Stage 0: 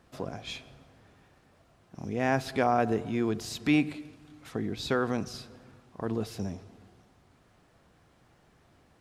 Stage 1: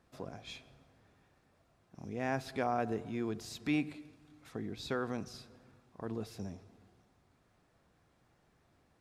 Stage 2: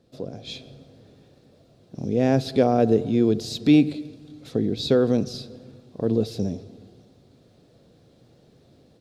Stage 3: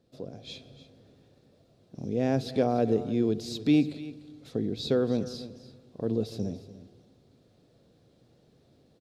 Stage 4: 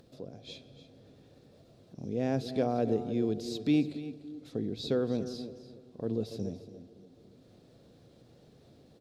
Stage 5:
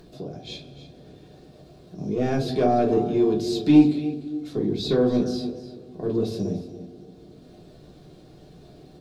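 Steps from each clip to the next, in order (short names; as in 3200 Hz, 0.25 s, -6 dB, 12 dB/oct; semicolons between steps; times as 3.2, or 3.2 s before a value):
notch 3000 Hz, Q 21; gain -8 dB
ten-band EQ 125 Hz +9 dB, 250 Hz +7 dB, 500 Hz +12 dB, 1000 Hz -7 dB, 2000 Hz -5 dB, 4000 Hz +11 dB; AGC gain up to 7 dB
echo 0.295 s -15.5 dB; gain -6.5 dB
band-limited delay 0.284 s, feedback 37%, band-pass 400 Hz, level -11.5 dB; upward compressor, threshold -45 dBFS; gain -4 dB
in parallel at -4 dB: soft clip -25 dBFS, distortion -13 dB; on the sum: reverb RT60 0.25 s, pre-delay 3 ms, DRR -2.5 dB; gain +1 dB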